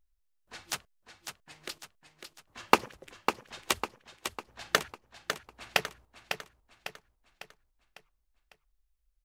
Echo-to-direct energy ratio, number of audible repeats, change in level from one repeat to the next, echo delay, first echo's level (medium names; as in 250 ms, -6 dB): -6.5 dB, 5, -6.5 dB, 551 ms, -7.5 dB